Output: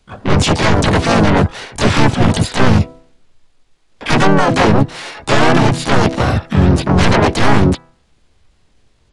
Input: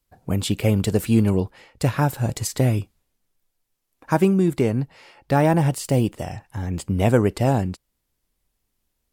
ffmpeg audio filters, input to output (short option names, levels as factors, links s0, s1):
-filter_complex "[0:a]acrossover=split=560|2200[s0][s1][s2];[s0]acompressor=threshold=0.1:ratio=4[s3];[s1]acompressor=threshold=0.0224:ratio=4[s4];[s2]acompressor=threshold=0.0158:ratio=4[s5];[s3][s4][s5]amix=inputs=3:normalize=0,bandreject=f=164.2:t=h:w=4,bandreject=f=328.4:t=h:w=4,bandreject=f=492.6:t=h:w=4,bandreject=f=656.8:t=h:w=4,bandreject=f=821:t=h:w=4,bandreject=f=985.2:t=h:w=4,bandreject=f=1149.4:t=h:w=4,bandreject=f=1313.6:t=h:w=4,aresample=11025,aeval=exprs='0.335*sin(PI/2*5.01*val(0)/0.335)':c=same,aresample=44100,asplit=4[s6][s7][s8][s9];[s7]asetrate=35002,aresample=44100,atempo=1.25992,volume=0.891[s10];[s8]asetrate=66075,aresample=44100,atempo=0.66742,volume=0.794[s11];[s9]asetrate=88200,aresample=44100,atempo=0.5,volume=0.794[s12];[s6][s10][s11][s12]amix=inputs=4:normalize=0,volume=0.75"